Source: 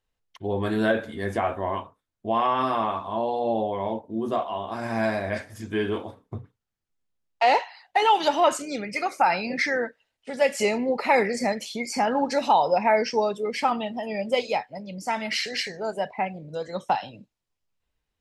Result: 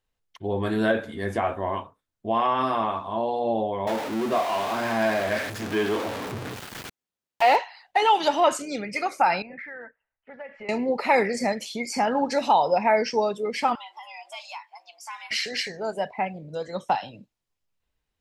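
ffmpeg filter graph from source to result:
-filter_complex "[0:a]asettb=1/sr,asplit=3[s0][s1][s2];[s0]atrim=end=3.874[s3];[s1]atrim=start=3.87:end=7.56,asetpts=PTS-STARTPTS,afade=t=in:d=0.004:c=qsin,afade=t=out:st=3.686:d=0.004:c=qsin,aeval=exprs='val(0)+0.5*0.0596*sgn(val(0))':c=same,acrossover=split=4400[s4][s5];[s5]acompressor=threshold=0.00794:ratio=4:attack=1:release=60[s6];[s4][s6]amix=inputs=2:normalize=0,highpass=f=260:p=1[s7];[s2]atrim=start=7.556[s8];[s3][s7]acrossfade=d=0.004:c1=hsin:c2=qsin[s9];[s9][s8]acrossfade=d=0.004:c1=qsin:c2=hsin,asettb=1/sr,asplit=3[s10][s11][s12];[s10]atrim=end=9.424[s13];[s11]atrim=start=9.42:end=10.69,asetpts=PTS-STARTPTS,afade=t=in:d=0.004:c=qsin,afade=t=out:st=1.266:d=0.004:c=qsin,lowpass=f=1800:w=0.5412,lowpass=f=1800:w=1.3066,equalizer=f=280:w=0.32:g=-14,acompressor=threshold=0.0178:ratio=5:attack=3.2:release=140:knee=1:detection=peak[s14];[s12]atrim=start=10.686[s15];[s13][s14]acrossfade=d=0.004:c1=hsin:c2=qsin[s16];[s16][s15]acrossfade=d=0.004:c1=qsin:c2=hsin,asettb=1/sr,asplit=3[s17][s18][s19];[s17]atrim=end=13.754[s20];[s18]atrim=start=13.75:end=15.31,asetpts=PTS-STARTPTS,afade=t=in:d=0.004:c=qsin,afade=t=out:st=1.556:d=0.004:c=qsin,highpass=f=760:w=0.5412,highpass=f=760:w=1.3066,afreqshift=130,acompressor=threshold=0.00891:ratio=2:attack=3.2:release=140:knee=1:detection=peak[s21];[s19]atrim=start=15.306[s22];[s20][s21]acrossfade=d=0.004:c1=hsin:c2=qsin[s23];[s23][s22]acrossfade=d=0.004:c1=qsin:c2=hsin"

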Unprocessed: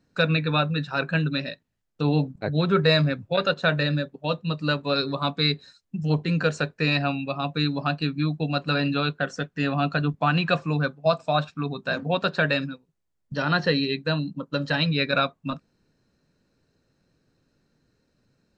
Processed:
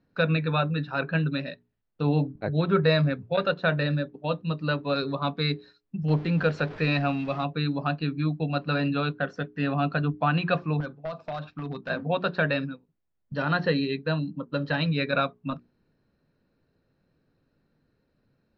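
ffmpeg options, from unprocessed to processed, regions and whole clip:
-filter_complex "[0:a]asettb=1/sr,asplit=3[s0][s1][s2];[s0]atrim=end=6.084[s3];[s1]atrim=start=6.08:end=7.44,asetpts=PTS-STARTPTS,afade=t=in:d=0.004:c=qsin,afade=t=out:st=1.356:d=0.004:c=qsin,aeval=exprs='val(0)+0.5*0.02*sgn(val(0))':c=same,acrusher=bits=8:mix=0:aa=0.5[s4];[s2]atrim=start=7.436[s5];[s3][s4]acrossfade=d=0.004:c1=hsin:c2=qsin[s6];[s6][s5]acrossfade=d=0.004:c1=qsin:c2=hsin,asettb=1/sr,asplit=3[s7][s8][s9];[s7]atrim=end=10.804[s10];[s8]atrim=start=10.8:end=11.9,asetpts=PTS-STARTPTS,afade=t=in:d=0.004:c=qsin,afade=t=out:st=1.096:d=0.004:c=qsin,acompressor=threshold=0.0501:ratio=8:attack=3.2:release=140:knee=1:detection=peak,aeval=exprs='0.0596*(abs(mod(val(0)/0.0596+3,4)-2)-1)':c=same[s11];[s9]atrim=start=11.896[s12];[s10][s11]acrossfade=d=0.004:c1=hsin:c2=qsin[s13];[s13][s12]acrossfade=d=0.004:c1=qsin:c2=hsin,lowpass=f=4800:w=0.5412,lowpass=f=4800:w=1.3066,highshelf=f=3100:g=-9,bandreject=f=60:t=h:w=6,bandreject=f=120:t=h:w=6,bandreject=f=180:t=h:w=6,bandreject=f=240:t=h:w=6,bandreject=f=300:t=h:w=6,bandreject=f=360:t=h:w=6,bandreject=f=420:t=h:w=6,volume=0.891"

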